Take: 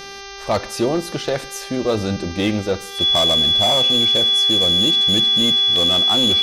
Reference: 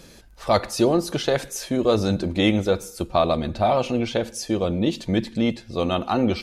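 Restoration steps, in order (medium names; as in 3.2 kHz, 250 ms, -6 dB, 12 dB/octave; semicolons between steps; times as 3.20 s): clip repair -11.5 dBFS; de-hum 395.6 Hz, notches 16; band-stop 3.4 kHz, Q 30; interpolate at 2.99/5.76 s, 1.6 ms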